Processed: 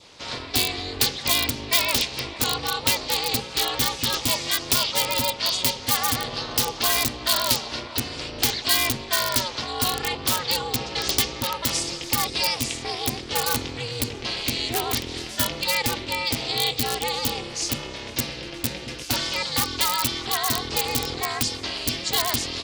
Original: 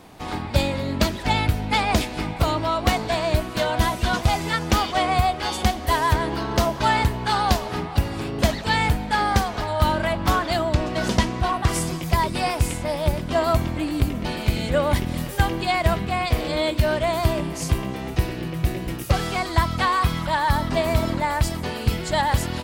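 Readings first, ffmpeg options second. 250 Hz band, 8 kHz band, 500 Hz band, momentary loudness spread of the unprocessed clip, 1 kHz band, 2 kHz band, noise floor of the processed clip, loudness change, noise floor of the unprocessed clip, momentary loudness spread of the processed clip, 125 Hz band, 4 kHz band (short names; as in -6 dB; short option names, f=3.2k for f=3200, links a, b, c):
-7.0 dB, +8.5 dB, -7.0 dB, 5 LU, -6.5 dB, -2.0 dB, -37 dBFS, -0.5 dB, -32 dBFS, 7 LU, -11.5 dB, +6.5 dB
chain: -filter_complex "[0:a]lowpass=f=4.9k:w=0.5412,lowpass=f=4.9k:w=1.3066,aemphasis=mode=production:type=75kf,asplit=2[a][b];[b]aeval=exprs='(mod(4.22*val(0)+1,2)-1)/4.22':c=same,volume=-5.5dB[c];[a][c]amix=inputs=2:normalize=0,aeval=exprs='val(0)*sin(2*PI*180*n/s)':c=same,crystalizer=i=5.5:c=0,adynamicequalizer=threshold=0.0251:dfrequency=1600:dqfactor=2.4:tfrequency=1600:tqfactor=2.4:attack=5:release=100:ratio=0.375:range=2.5:mode=cutabove:tftype=bell,highpass=41,volume=-9dB"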